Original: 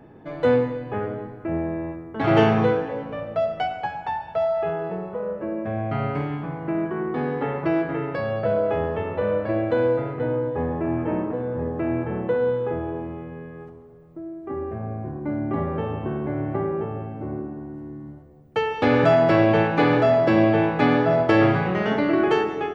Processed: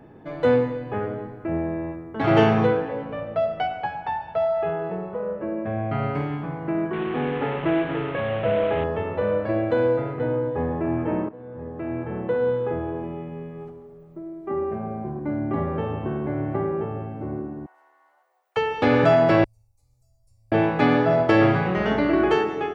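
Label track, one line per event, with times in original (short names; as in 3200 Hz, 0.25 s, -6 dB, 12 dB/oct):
2.670000	6.030000	LPF 4400 Hz
6.930000	8.840000	delta modulation 16 kbps, step -27.5 dBFS
11.290000	12.510000	fade in, from -17 dB
13.030000	15.190000	comb 5.1 ms
17.660000	18.570000	inverse Chebyshev high-pass stop band from 240 Hz, stop band 60 dB
19.440000	20.520000	inverse Chebyshev band-stop 160–3400 Hz, stop band 60 dB
21.760000	22.340000	buzz 60 Hz, harmonics 33, -36 dBFS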